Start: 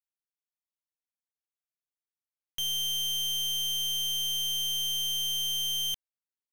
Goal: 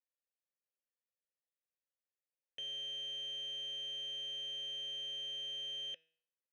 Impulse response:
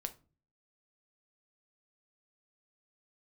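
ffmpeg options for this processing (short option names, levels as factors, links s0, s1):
-filter_complex "[0:a]asplit=3[s0][s1][s2];[s0]bandpass=f=530:t=q:w=8,volume=1[s3];[s1]bandpass=f=1840:t=q:w=8,volume=0.501[s4];[s2]bandpass=f=2480:t=q:w=8,volume=0.355[s5];[s3][s4][s5]amix=inputs=3:normalize=0,aemphasis=mode=reproduction:type=50fm,bandreject=f=161.2:t=h:w=4,bandreject=f=322.4:t=h:w=4,bandreject=f=483.6:t=h:w=4,bandreject=f=644.8:t=h:w=4,bandreject=f=806:t=h:w=4,bandreject=f=967.2:t=h:w=4,bandreject=f=1128.4:t=h:w=4,bandreject=f=1289.6:t=h:w=4,bandreject=f=1450.8:t=h:w=4,bandreject=f=1612:t=h:w=4,bandreject=f=1773.2:t=h:w=4,bandreject=f=1934.4:t=h:w=4,bandreject=f=2095.6:t=h:w=4,bandreject=f=2256.8:t=h:w=4,bandreject=f=2418:t=h:w=4,bandreject=f=2579.2:t=h:w=4,bandreject=f=2740.4:t=h:w=4,bandreject=f=2901.6:t=h:w=4,bandreject=f=3062.8:t=h:w=4,bandreject=f=3224:t=h:w=4,bandreject=f=3385.2:t=h:w=4,bandreject=f=3546.4:t=h:w=4,bandreject=f=3707.6:t=h:w=4,bandreject=f=3868.8:t=h:w=4,bandreject=f=4030:t=h:w=4,bandreject=f=4191.2:t=h:w=4,bandreject=f=4352.4:t=h:w=4,bandreject=f=4513.6:t=h:w=4,bandreject=f=4674.8:t=h:w=4,bandreject=f=4836:t=h:w=4,bandreject=f=4997.2:t=h:w=4,bandreject=f=5158.4:t=h:w=4,bandreject=f=5319.6:t=h:w=4,bandreject=f=5480.8:t=h:w=4,bandreject=f=5642:t=h:w=4,bandreject=f=5803.2:t=h:w=4,bandreject=f=5964.4:t=h:w=4,bandreject=f=6125.6:t=h:w=4,volume=2.37"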